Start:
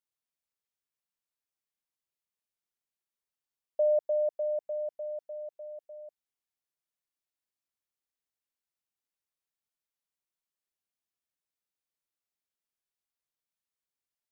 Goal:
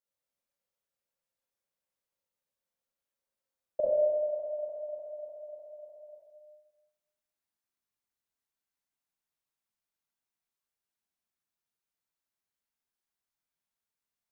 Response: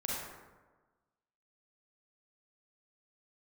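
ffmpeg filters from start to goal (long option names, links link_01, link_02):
-filter_complex "[0:a]asetnsamples=nb_out_samples=441:pad=0,asendcmd='3.8 equalizer g -5.5',equalizer=frequency=530:width_type=o:width=0.31:gain=10.5[link_01];[1:a]atrim=start_sample=2205[link_02];[link_01][link_02]afir=irnorm=-1:irlink=0,volume=-2dB"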